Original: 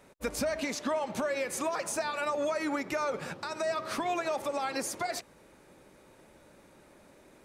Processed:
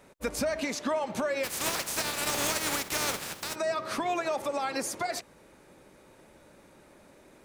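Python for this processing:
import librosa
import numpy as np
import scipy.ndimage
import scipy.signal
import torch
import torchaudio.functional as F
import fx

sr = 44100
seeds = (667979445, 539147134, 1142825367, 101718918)

y = fx.spec_flatten(x, sr, power=0.3, at=(1.43, 3.54), fade=0.02)
y = y * 10.0 ** (1.5 / 20.0)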